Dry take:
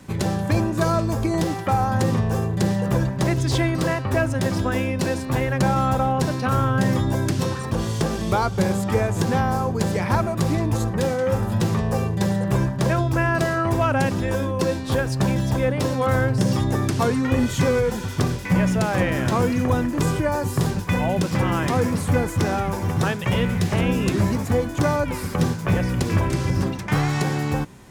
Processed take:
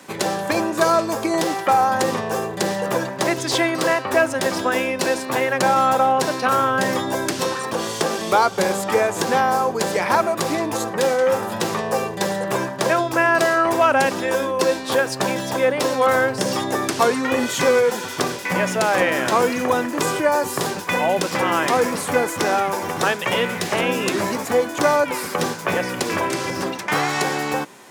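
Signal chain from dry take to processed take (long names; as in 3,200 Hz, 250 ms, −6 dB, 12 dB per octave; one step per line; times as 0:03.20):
high-pass filter 410 Hz 12 dB per octave
level +6.5 dB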